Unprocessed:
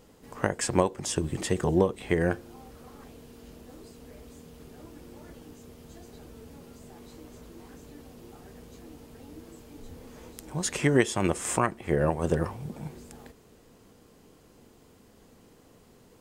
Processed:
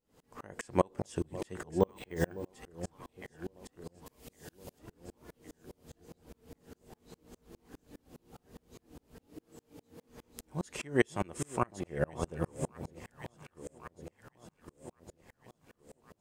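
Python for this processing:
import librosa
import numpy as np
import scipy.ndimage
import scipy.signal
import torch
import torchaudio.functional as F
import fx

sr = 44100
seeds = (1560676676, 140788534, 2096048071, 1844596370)

y = fx.high_shelf(x, sr, hz=2900.0, db=12.0, at=(4.06, 4.79))
y = fx.highpass(y, sr, hz=110.0, slope=24, at=(9.27, 10.09))
y = fx.echo_alternate(y, sr, ms=555, hz=870.0, feedback_pct=72, wet_db=-9)
y = fx.resample_bad(y, sr, factor=2, down='filtered', up='hold', at=(1.81, 2.47))
y = fx.tremolo_decay(y, sr, direction='swelling', hz=4.9, depth_db=35)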